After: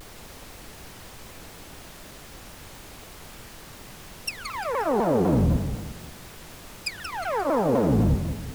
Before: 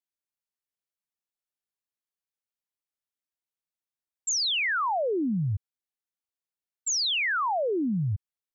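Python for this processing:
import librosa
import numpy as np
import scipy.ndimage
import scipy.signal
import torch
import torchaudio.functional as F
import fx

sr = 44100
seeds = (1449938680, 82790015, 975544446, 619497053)

y = fx.cycle_switch(x, sr, every=3, mode='inverted')
y = fx.env_lowpass_down(y, sr, base_hz=760.0, full_db=-24.5)
y = fx.notch_comb(y, sr, f0_hz=360.0)
y = fx.dmg_noise_colour(y, sr, seeds[0], colour='pink', level_db=-51.0)
y = fx.echo_feedback(y, sr, ms=177, feedback_pct=43, wet_db=-8)
y = fx.vibrato_shape(y, sr, shape='saw_down', rate_hz=4.0, depth_cents=250.0)
y = F.gain(torch.from_numpy(y), 7.0).numpy()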